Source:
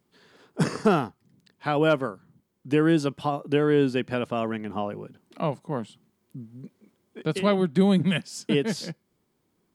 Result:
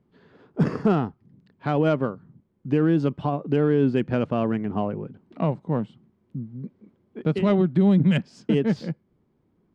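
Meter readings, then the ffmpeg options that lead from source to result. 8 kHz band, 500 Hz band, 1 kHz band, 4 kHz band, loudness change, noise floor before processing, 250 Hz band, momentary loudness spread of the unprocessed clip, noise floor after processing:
under -15 dB, 0.0 dB, -1.5 dB, -6.5 dB, +2.0 dB, -73 dBFS, +3.0 dB, 18 LU, -68 dBFS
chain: -af "adynamicsmooth=sensitivity=1:basefreq=2700,lowshelf=f=360:g=9,alimiter=limit=0.266:level=0:latency=1:release=79"

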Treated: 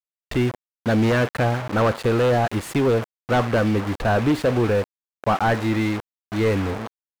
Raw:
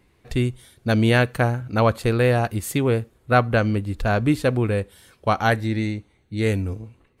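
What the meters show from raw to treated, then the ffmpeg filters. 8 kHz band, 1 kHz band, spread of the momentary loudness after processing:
-2.0 dB, +0.5 dB, 9 LU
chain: -filter_complex "[0:a]acrusher=bits=5:mix=0:aa=0.000001,aeval=exprs='0.282*(abs(mod(val(0)/0.282+3,4)-2)-1)':c=same,asplit=2[s0][s1];[s1]highpass=f=720:p=1,volume=11.2,asoftclip=type=tanh:threshold=0.282[s2];[s0][s2]amix=inputs=2:normalize=0,lowpass=f=1100:p=1,volume=0.501"

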